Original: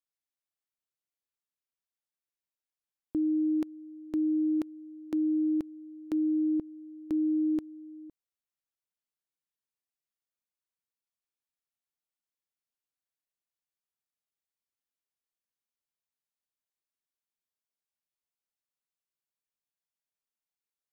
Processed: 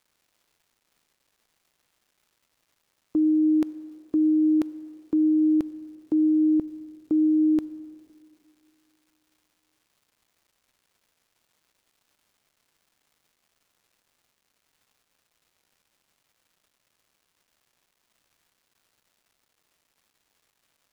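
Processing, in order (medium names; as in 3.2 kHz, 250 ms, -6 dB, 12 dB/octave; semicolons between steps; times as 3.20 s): gate -37 dBFS, range -18 dB; crackle 600 per s -64 dBFS; on a send: reverberation RT60 2.5 s, pre-delay 6 ms, DRR 15.5 dB; on the sum: trim +7 dB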